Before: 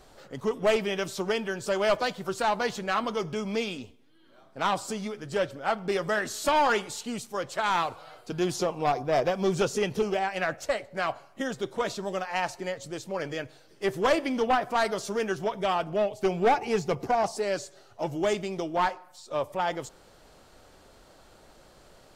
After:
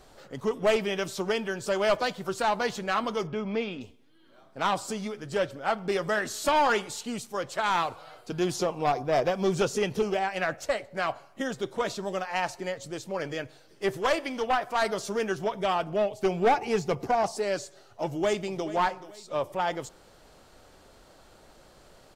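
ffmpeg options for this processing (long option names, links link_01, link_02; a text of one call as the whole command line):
ffmpeg -i in.wav -filter_complex "[0:a]asettb=1/sr,asplit=3[link_01][link_02][link_03];[link_01]atrim=end=3.274[link_04];[link_02]atrim=start=3.27:end=3.81,asetpts=PTS-STARTPTS,afade=type=in:duration=0.004:curve=qsin,afade=type=out:start_time=0.536:duration=0.004:curve=qsin,lowpass=2700[link_05];[link_03]atrim=start=3.806[link_06];[link_04][link_05]acrossfade=duration=0.004:curve1=hsin:curve2=qsin[link_07];[link_07][link_06]acrossfade=duration=0.004:curve1=qsin:curve2=hsin,asettb=1/sr,asplit=3[link_08][link_09][link_10];[link_08]atrim=end=13.974[link_11];[link_09]atrim=start=13.97:end=14.82,asetpts=PTS-STARTPTS,afade=type=in:duration=0.004:curve=qsin,afade=type=out:start_time=0.846:duration=0.004:curve=qsin,equalizer=frequency=170:width_type=o:width=2.6:gain=-8[link_12];[link_10]atrim=start=14.816[link_13];[link_11][link_12]acrossfade=duration=0.004:curve1=hsin:curve2=qsin[link_14];[link_14][link_13]acrossfade=duration=0.004:curve1=qsin:curve2=hsin,asplit=2[link_15][link_16];[link_16]afade=type=in:start_time=18.04:duration=0.01,afade=type=out:start_time=18.67:duration=0.01,aecho=0:1:430|860|1290:0.177828|0.0622398|0.0217839[link_17];[link_15][link_17]amix=inputs=2:normalize=0" out.wav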